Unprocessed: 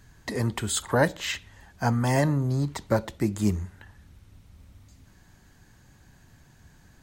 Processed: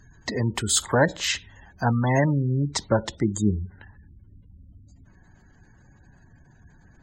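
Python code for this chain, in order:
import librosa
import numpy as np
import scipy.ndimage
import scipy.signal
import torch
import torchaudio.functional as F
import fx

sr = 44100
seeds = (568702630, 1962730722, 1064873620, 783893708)

y = fx.spec_gate(x, sr, threshold_db=-25, keep='strong')
y = fx.peak_eq(y, sr, hz=5500.0, db=fx.steps((0.0, 7.0), (1.93, 14.0), (3.61, -3.0)), octaves=1.3)
y = y * 10.0 ** (2.0 / 20.0)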